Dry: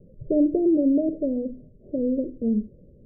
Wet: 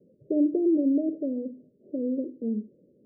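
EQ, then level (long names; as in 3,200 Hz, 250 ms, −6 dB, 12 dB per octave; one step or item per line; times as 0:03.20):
four-pole ladder band-pass 370 Hz, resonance 25%
+6.5 dB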